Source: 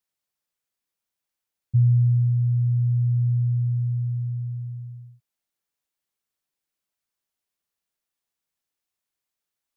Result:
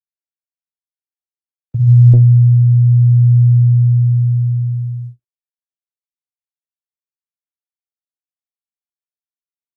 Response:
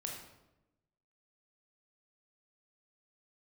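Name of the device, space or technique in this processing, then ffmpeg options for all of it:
speakerphone in a meeting room: -filter_complex "[0:a]aecho=1:1:374|748|1122|1496|1870:0.141|0.0749|0.0397|0.021|0.0111[a];[1:a]atrim=start_sample=2205[b];[a][b]afir=irnorm=-1:irlink=0,dynaudnorm=f=450:g=7:m=8.5dB,agate=range=-58dB:threshold=-29dB:ratio=16:detection=peak,volume=2dB" -ar 48000 -c:a libopus -b:a 20k

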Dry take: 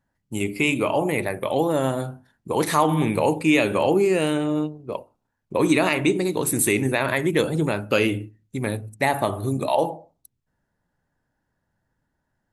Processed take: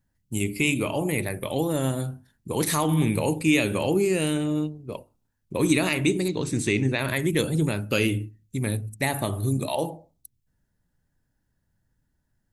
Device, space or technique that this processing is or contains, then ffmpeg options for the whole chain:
smiley-face EQ: -filter_complex "[0:a]lowshelf=f=96:g=7.5,equalizer=f=860:t=o:w=2.3:g=-8.5,highshelf=f=6.6k:g=6,asettb=1/sr,asplit=3[a][b][c];[a]atrim=end=6.284[d];[b]atrim=start=6.28:end=6.99,asetpts=PTS-STARTPTS,afade=t=in:d=0.004:c=qsin,afade=t=out:st=0.706:d=0.004:c=qsin,lowpass=f=6k:w=0.5412,lowpass=f=6k:w=1.3066[e];[c]atrim=start=6.986[f];[d][e]acrossfade=d=0.004:c1=hsin:c2=qsin[g];[g][f]acrossfade=d=0.004:c1=qsin:c2=hsin"

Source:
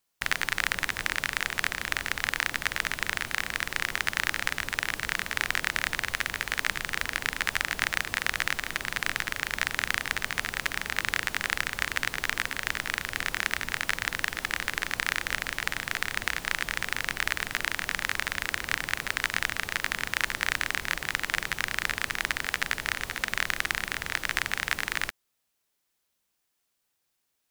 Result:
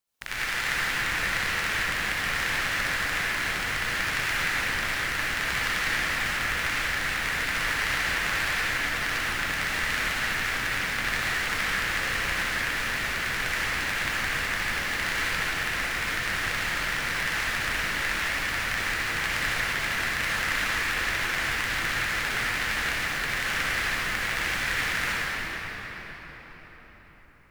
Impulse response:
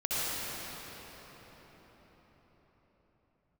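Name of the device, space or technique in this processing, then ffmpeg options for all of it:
cathedral: -filter_complex "[1:a]atrim=start_sample=2205[a];[0:a][a]afir=irnorm=-1:irlink=0,volume=-6.5dB"

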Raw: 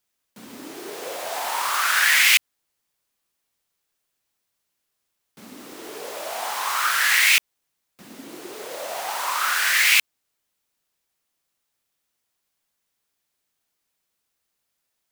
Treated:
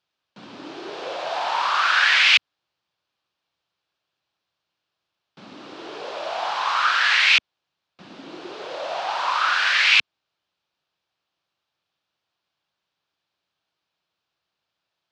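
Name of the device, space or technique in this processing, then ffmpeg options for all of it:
guitar cabinet: -af "highpass=89,equalizer=f=240:t=q:w=4:g=-9,equalizer=f=440:t=q:w=4:g=-5,equalizer=f=2k:t=q:w=4:g=-7,lowpass=f=4.4k:w=0.5412,lowpass=f=4.4k:w=1.3066,volume=4dB"

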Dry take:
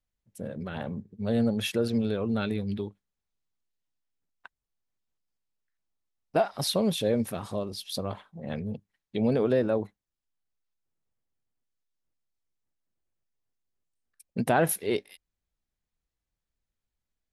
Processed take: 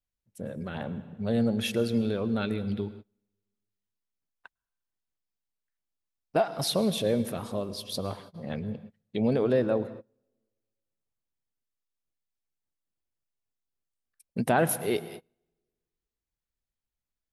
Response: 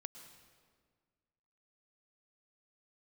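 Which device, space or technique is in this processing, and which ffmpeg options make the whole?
keyed gated reverb: -filter_complex "[0:a]asplit=3[a][b][c];[1:a]atrim=start_sample=2205[d];[b][d]afir=irnorm=-1:irlink=0[e];[c]apad=whole_len=763920[f];[e][f]sidechaingate=range=-28dB:threshold=-50dB:ratio=16:detection=peak,volume=3.5dB[g];[a][g]amix=inputs=2:normalize=0,volume=-5.5dB"

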